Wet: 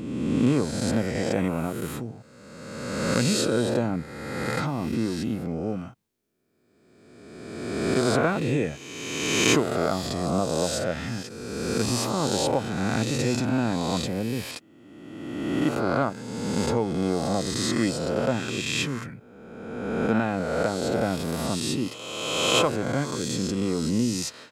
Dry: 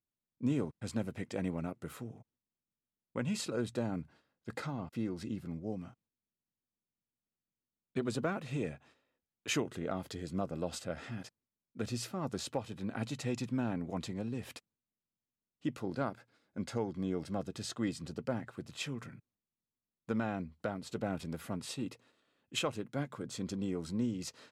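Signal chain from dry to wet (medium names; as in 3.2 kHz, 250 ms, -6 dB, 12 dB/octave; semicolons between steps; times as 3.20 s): reverse spectral sustain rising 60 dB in 1.74 s; trim +8.5 dB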